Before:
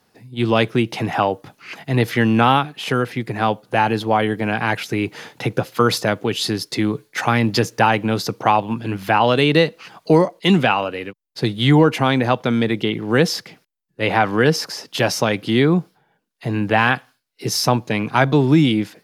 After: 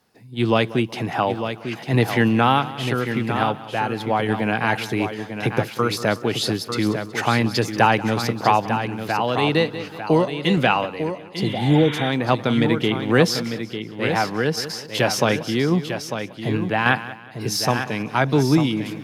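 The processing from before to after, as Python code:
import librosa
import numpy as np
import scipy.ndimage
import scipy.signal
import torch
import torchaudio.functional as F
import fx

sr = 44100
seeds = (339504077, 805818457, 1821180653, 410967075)

y = fx.echo_feedback(x, sr, ms=185, feedback_pct=43, wet_db=-17.0)
y = fx.tremolo_random(y, sr, seeds[0], hz=3.5, depth_pct=55)
y = y + 10.0 ** (-8.5 / 20.0) * np.pad(y, (int(898 * sr / 1000.0), 0))[:len(y)]
y = fx.spec_repair(y, sr, seeds[1], start_s=11.4, length_s=0.67, low_hz=900.0, high_hz=3900.0, source='both')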